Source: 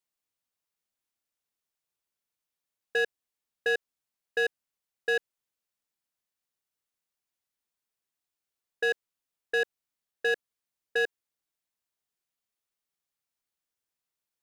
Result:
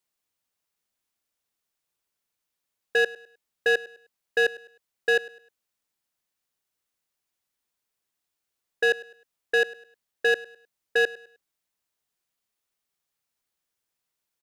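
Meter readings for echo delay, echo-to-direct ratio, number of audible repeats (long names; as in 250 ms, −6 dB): 103 ms, −19.0 dB, 2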